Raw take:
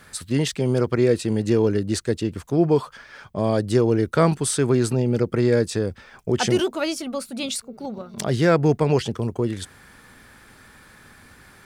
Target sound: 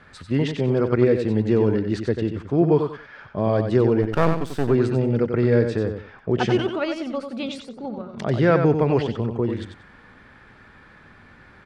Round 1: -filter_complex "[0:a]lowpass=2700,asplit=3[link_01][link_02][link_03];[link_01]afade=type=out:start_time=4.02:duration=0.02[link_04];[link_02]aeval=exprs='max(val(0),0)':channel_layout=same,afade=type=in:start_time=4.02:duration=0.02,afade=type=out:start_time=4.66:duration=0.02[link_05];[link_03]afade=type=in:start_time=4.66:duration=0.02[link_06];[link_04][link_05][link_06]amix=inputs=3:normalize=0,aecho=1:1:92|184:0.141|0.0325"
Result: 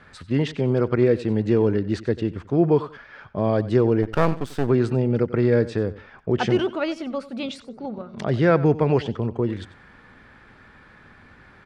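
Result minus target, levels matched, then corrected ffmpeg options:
echo-to-direct −10 dB
-filter_complex "[0:a]lowpass=2700,asplit=3[link_01][link_02][link_03];[link_01]afade=type=out:start_time=4.02:duration=0.02[link_04];[link_02]aeval=exprs='max(val(0),0)':channel_layout=same,afade=type=in:start_time=4.02:duration=0.02,afade=type=out:start_time=4.66:duration=0.02[link_05];[link_03]afade=type=in:start_time=4.66:duration=0.02[link_06];[link_04][link_05][link_06]amix=inputs=3:normalize=0,aecho=1:1:92|184|276:0.447|0.103|0.0236"

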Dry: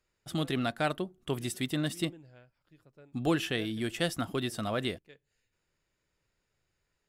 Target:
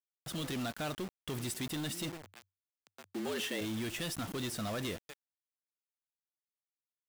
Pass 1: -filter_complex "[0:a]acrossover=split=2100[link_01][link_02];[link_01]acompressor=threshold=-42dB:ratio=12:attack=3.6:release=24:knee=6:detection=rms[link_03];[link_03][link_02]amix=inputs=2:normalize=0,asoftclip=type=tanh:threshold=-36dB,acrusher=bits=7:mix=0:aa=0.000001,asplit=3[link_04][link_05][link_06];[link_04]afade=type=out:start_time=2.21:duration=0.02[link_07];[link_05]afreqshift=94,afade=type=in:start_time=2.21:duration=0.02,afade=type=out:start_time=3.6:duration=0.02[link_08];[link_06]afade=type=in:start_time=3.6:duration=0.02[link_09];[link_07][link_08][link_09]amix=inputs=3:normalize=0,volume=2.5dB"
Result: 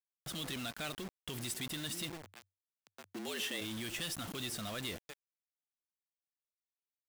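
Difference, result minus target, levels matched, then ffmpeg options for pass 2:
downward compressor: peak gain reduction +9 dB
-filter_complex "[0:a]acrossover=split=2100[link_01][link_02];[link_01]acompressor=threshold=-32dB:ratio=12:attack=3.6:release=24:knee=6:detection=rms[link_03];[link_03][link_02]amix=inputs=2:normalize=0,asoftclip=type=tanh:threshold=-36dB,acrusher=bits=7:mix=0:aa=0.000001,asplit=3[link_04][link_05][link_06];[link_04]afade=type=out:start_time=2.21:duration=0.02[link_07];[link_05]afreqshift=94,afade=type=in:start_time=2.21:duration=0.02,afade=type=out:start_time=3.6:duration=0.02[link_08];[link_06]afade=type=in:start_time=3.6:duration=0.02[link_09];[link_07][link_08][link_09]amix=inputs=3:normalize=0,volume=2.5dB"

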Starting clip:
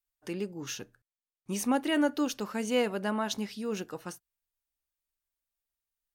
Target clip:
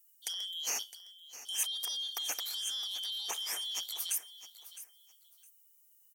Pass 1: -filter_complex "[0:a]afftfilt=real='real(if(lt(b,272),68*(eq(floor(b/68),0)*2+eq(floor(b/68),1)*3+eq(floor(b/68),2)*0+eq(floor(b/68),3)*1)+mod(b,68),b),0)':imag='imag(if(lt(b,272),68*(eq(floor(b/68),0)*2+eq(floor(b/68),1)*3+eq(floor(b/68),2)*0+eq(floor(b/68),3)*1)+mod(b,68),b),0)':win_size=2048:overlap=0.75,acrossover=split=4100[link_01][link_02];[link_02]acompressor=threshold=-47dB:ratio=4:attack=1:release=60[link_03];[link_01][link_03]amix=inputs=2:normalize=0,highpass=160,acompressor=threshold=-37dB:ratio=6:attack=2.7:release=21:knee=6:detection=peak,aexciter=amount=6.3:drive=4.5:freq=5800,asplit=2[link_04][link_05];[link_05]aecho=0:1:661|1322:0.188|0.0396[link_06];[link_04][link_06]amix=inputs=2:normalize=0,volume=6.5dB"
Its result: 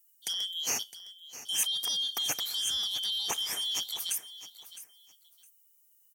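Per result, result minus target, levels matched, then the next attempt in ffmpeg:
125 Hz band +14.0 dB; downward compressor: peak gain reduction −6 dB
-filter_complex "[0:a]afftfilt=real='real(if(lt(b,272),68*(eq(floor(b/68),0)*2+eq(floor(b/68),1)*3+eq(floor(b/68),2)*0+eq(floor(b/68),3)*1)+mod(b,68),b),0)':imag='imag(if(lt(b,272),68*(eq(floor(b/68),0)*2+eq(floor(b/68),1)*3+eq(floor(b/68),2)*0+eq(floor(b/68),3)*1)+mod(b,68),b),0)':win_size=2048:overlap=0.75,acrossover=split=4100[link_01][link_02];[link_02]acompressor=threshold=-47dB:ratio=4:attack=1:release=60[link_03];[link_01][link_03]amix=inputs=2:normalize=0,highpass=430,acompressor=threshold=-37dB:ratio=6:attack=2.7:release=21:knee=6:detection=peak,aexciter=amount=6.3:drive=4.5:freq=5800,asplit=2[link_04][link_05];[link_05]aecho=0:1:661|1322:0.188|0.0396[link_06];[link_04][link_06]amix=inputs=2:normalize=0,volume=6.5dB"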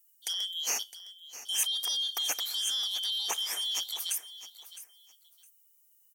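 downward compressor: peak gain reduction −6 dB
-filter_complex "[0:a]afftfilt=real='real(if(lt(b,272),68*(eq(floor(b/68),0)*2+eq(floor(b/68),1)*3+eq(floor(b/68),2)*0+eq(floor(b/68),3)*1)+mod(b,68),b),0)':imag='imag(if(lt(b,272),68*(eq(floor(b/68),0)*2+eq(floor(b/68),1)*3+eq(floor(b/68),2)*0+eq(floor(b/68),3)*1)+mod(b,68),b),0)':win_size=2048:overlap=0.75,acrossover=split=4100[link_01][link_02];[link_02]acompressor=threshold=-47dB:ratio=4:attack=1:release=60[link_03];[link_01][link_03]amix=inputs=2:normalize=0,highpass=430,acompressor=threshold=-44.5dB:ratio=6:attack=2.7:release=21:knee=6:detection=peak,aexciter=amount=6.3:drive=4.5:freq=5800,asplit=2[link_04][link_05];[link_05]aecho=0:1:661|1322:0.188|0.0396[link_06];[link_04][link_06]amix=inputs=2:normalize=0,volume=6.5dB"

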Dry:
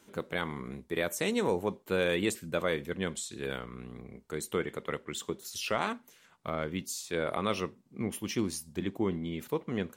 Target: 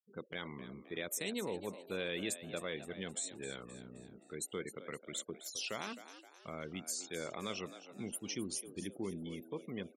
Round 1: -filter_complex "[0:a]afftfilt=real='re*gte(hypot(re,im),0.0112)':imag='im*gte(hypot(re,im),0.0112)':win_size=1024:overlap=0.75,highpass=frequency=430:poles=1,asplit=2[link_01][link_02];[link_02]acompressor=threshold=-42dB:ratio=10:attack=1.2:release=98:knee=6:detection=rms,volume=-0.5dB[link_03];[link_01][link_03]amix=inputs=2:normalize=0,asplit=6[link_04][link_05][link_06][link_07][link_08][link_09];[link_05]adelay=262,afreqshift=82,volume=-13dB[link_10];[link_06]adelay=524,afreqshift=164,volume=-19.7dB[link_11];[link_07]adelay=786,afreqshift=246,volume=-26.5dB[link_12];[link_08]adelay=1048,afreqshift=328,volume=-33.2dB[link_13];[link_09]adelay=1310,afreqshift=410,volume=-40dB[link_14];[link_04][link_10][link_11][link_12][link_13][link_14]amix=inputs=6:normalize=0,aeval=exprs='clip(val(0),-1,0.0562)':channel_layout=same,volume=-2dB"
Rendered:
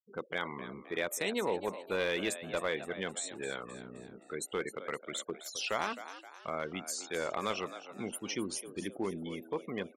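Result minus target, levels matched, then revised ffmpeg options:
1,000 Hz band +5.5 dB
-filter_complex "[0:a]afftfilt=real='re*gte(hypot(re,im),0.0112)':imag='im*gte(hypot(re,im),0.0112)':win_size=1024:overlap=0.75,highpass=frequency=430:poles=1,equalizer=frequency=990:width=0.4:gain=-13,asplit=2[link_01][link_02];[link_02]acompressor=threshold=-42dB:ratio=10:attack=1.2:release=98:knee=6:detection=rms,volume=-0.5dB[link_03];[link_01][link_03]amix=inputs=2:normalize=0,asplit=6[link_04][link_05][link_06][link_07][link_08][link_09];[link_05]adelay=262,afreqshift=82,volume=-13dB[link_10];[link_06]adelay=524,afreqshift=164,volume=-19.7dB[link_11];[link_07]adelay=786,afreqshift=246,volume=-26.5dB[link_12];[link_08]adelay=1048,afreqshift=328,volume=-33.2dB[link_13];[link_09]adelay=1310,afreqshift=410,volume=-40dB[link_14];[link_04][link_10][link_11][link_12][link_13][link_14]amix=inputs=6:normalize=0,aeval=exprs='clip(val(0),-1,0.0562)':channel_layout=same,volume=-2dB"

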